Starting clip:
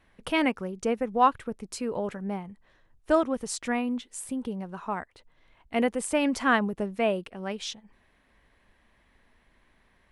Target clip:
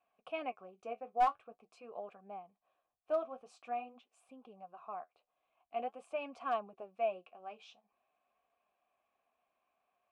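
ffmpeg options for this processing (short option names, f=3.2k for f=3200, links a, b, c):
-filter_complex "[0:a]asplit=3[a][b][c];[a]bandpass=f=730:t=q:w=8,volume=0dB[d];[b]bandpass=f=1.09k:t=q:w=8,volume=-6dB[e];[c]bandpass=f=2.44k:t=q:w=8,volume=-9dB[f];[d][e][f]amix=inputs=3:normalize=0,acrossover=split=5400[g][h];[g]aeval=exprs='clip(val(0),-1,0.0794)':c=same[i];[i][h]amix=inputs=2:normalize=0,flanger=delay=4.2:depth=8.7:regen=-50:speed=0.47:shape=sinusoidal,volume=1dB"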